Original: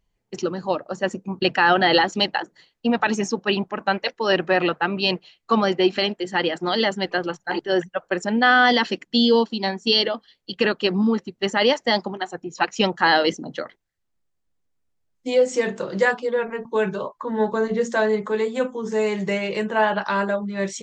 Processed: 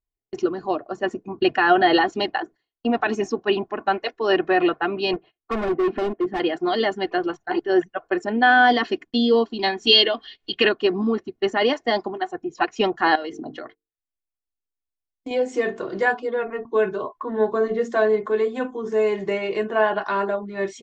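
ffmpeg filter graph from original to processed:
-filter_complex "[0:a]asettb=1/sr,asplit=3[a][b][c];[a]atrim=end=5.134[d];[b]atrim=start=5.13:end=6.4,asetpts=PTS-STARTPTS,afade=t=in:d=0.004:c=qsin,afade=t=out:st=1.266:d=0.004:c=qsin,lowpass=1.9k,equalizer=f=220:w=0.47:g=6,volume=21.5dB,asoftclip=hard,volume=-21.5dB[e];[c]atrim=start=6.396[f];[d][e]acrossfade=d=0.004:c1=hsin:c2=qsin[g];[g][f]acrossfade=d=0.004:c1=qsin:c2=hsin,asettb=1/sr,asplit=3[h][i][j];[h]atrim=end=9.594[k];[i]atrim=start=9.59:end=10.69,asetpts=PTS-STARTPTS,afade=t=in:d=0.004:c=qsin,afade=t=out:st=1.096:d=0.004:c=qsin,equalizer=f=3.2k:w=0.82:g=11,acompressor=mode=upward:threshold=-23dB:ratio=2.5:attack=3.2:release=140:knee=2.83:detection=peak[l];[j]atrim=start=10.686[m];[k][l]acrossfade=d=0.004:c1=hsin:c2=qsin[n];[n][m]acrossfade=d=0.004:c1=qsin:c2=hsin,asettb=1/sr,asplit=3[o][p][q];[o]atrim=end=13.154[r];[p]atrim=start=13.15:end=15.31,asetpts=PTS-STARTPTS,afade=t=in:d=0.004:c=qsin,afade=t=out:st=2.156:d=0.004:c=qsin,bandreject=f=50:t=h:w=6,bandreject=f=100:t=h:w=6,bandreject=f=150:t=h:w=6,bandreject=f=200:t=h:w=6,bandreject=f=250:t=h:w=6,bandreject=f=300:t=h:w=6,bandreject=f=350:t=h:w=6,bandreject=f=400:t=h:w=6,bandreject=f=450:t=h:w=6,acompressor=threshold=-26dB:ratio=16:attack=3.2:release=140:knee=1:detection=peak[s];[q]atrim=start=15.306[t];[r][s]acrossfade=d=0.004:c1=hsin:c2=qsin[u];[u][t]acrossfade=d=0.004:c1=qsin:c2=hsin,lowpass=f=1.7k:p=1,agate=range=-20dB:threshold=-42dB:ratio=16:detection=peak,aecho=1:1:2.8:0.65"

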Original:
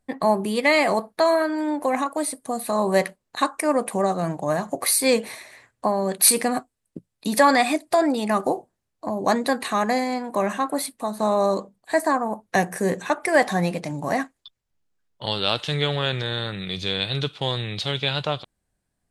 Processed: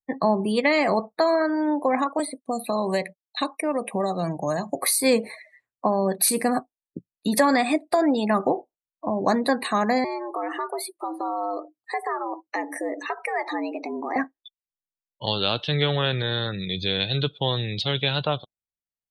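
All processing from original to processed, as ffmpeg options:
-filter_complex "[0:a]asettb=1/sr,asplit=3[a][b][c];[a]atrim=end=2.194[d];[b]atrim=start=2.19:end=4.83,asetpts=PTS-STARTPTS,afade=t=in:d=0.004:c=qsin,afade=t=out:st=2.636:d=0.004:c=qsin,agate=range=-33dB:threshold=-41dB:ratio=3:release=100:detection=peak,highshelf=f=2k:t=q:w=1.5:g=6,acrossover=split=860|3500[e][f][g];[e]acompressor=threshold=-25dB:ratio=4[h];[f]acompressor=threshold=-33dB:ratio=4[i];[g]acompressor=threshold=-38dB:ratio=4[j];[h][i][j]amix=inputs=3:normalize=0[k];[c]atrim=start=4.826[l];[d][k]acrossfade=d=0.004:c1=hsin:c2=qsin[m];[m][l]acrossfade=d=0.004:c1=qsin:c2=hsin,asettb=1/sr,asplit=3[n][o][p];[n]atrim=end=10.044[q];[o]atrim=start=10.04:end=14.16,asetpts=PTS-STARTPTS,afade=t=in:d=0.004:c=qsin,afade=t=out:st=4.116:d=0.004:c=qsin,acompressor=threshold=-29dB:ratio=3:attack=3.2:release=140:knee=1:detection=peak,afreqshift=110,equalizer=f=2.6k:w=0.4:g=2[r];[p]atrim=start=14.156[s];[q][r]acrossfade=d=0.004:c1=hsin:c2=qsin[t];[t][s]acrossfade=d=0.004:c1=qsin:c2=hsin,afftdn=nr=31:nf=-36,acrossover=split=420[u][v];[v]acompressor=threshold=-21dB:ratio=4[w];[u][w]amix=inputs=2:normalize=0,volume=1.5dB"

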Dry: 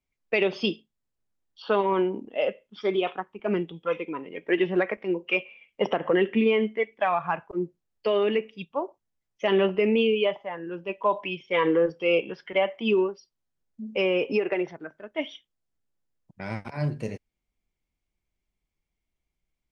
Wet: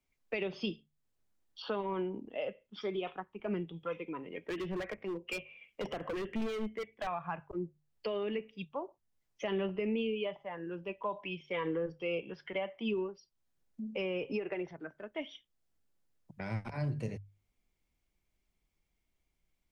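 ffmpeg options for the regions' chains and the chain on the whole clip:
-filter_complex "[0:a]asettb=1/sr,asplit=3[a][b][c];[a]atrim=end=4.484[d];[b]atrim=start=4.48:end=7.07,asetpts=PTS-STARTPTS,afade=t=in:d=0.004:c=qsin,afade=t=out:st=2.586:d=0.004:c=qsin,bandreject=f=880:w=12,volume=24.5dB,asoftclip=hard,volume=-24.5dB[e];[c]atrim=start=7.066[f];[d][e]acrossfade=d=0.004:c1=hsin:c2=qsin[g];[g][f]acrossfade=d=0.004:c1=qsin:c2=hsin,bandreject=f=50:t=h:w=6,bandreject=f=100:t=h:w=6,bandreject=f=150:t=h:w=6,acrossover=split=130[h][i];[i]acompressor=threshold=-49dB:ratio=2[j];[h][j]amix=inputs=2:normalize=0,volume=2.5dB"

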